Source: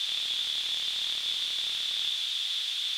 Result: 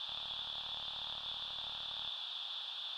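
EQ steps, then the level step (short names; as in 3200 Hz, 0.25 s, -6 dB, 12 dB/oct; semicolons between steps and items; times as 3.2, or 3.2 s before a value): air absorption 430 m; bell 850 Hz +3.5 dB 0.39 oct; fixed phaser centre 880 Hz, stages 4; +3.5 dB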